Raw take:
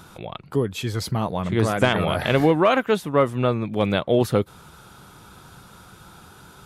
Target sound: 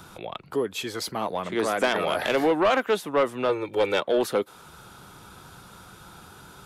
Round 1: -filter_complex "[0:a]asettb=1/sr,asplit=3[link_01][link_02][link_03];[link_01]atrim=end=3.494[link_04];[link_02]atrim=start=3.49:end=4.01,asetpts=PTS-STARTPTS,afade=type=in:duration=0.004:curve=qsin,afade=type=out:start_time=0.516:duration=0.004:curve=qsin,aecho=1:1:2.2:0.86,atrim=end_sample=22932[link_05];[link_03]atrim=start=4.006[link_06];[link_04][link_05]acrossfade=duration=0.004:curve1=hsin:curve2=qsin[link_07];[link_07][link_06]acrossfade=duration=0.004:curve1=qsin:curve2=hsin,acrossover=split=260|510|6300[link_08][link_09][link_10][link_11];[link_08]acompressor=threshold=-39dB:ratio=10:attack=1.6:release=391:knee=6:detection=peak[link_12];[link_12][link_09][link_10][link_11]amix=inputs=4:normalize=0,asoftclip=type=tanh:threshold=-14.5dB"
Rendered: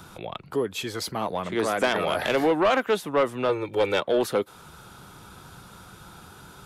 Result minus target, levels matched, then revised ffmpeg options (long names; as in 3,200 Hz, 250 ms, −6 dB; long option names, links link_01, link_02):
downward compressor: peak gain reduction −6 dB
-filter_complex "[0:a]asettb=1/sr,asplit=3[link_01][link_02][link_03];[link_01]atrim=end=3.494[link_04];[link_02]atrim=start=3.49:end=4.01,asetpts=PTS-STARTPTS,afade=type=in:duration=0.004:curve=qsin,afade=type=out:start_time=0.516:duration=0.004:curve=qsin,aecho=1:1:2.2:0.86,atrim=end_sample=22932[link_05];[link_03]atrim=start=4.006[link_06];[link_04][link_05]acrossfade=duration=0.004:curve1=hsin:curve2=qsin[link_07];[link_07][link_06]acrossfade=duration=0.004:curve1=qsin:curve2=hsin,acrossover=split=260|510|6300[link_08][link_09][link_10][link_11];[link_08]acompressor=threshold=-45.5dB:ratio=10:attack=1.6:release=391:knee=6:detection=peak[link_12];[link_12][link_09][link_10][link_11]amix=inputs=4:normalize=0,asoftclip=type=tanh:threshold=-14.5dB"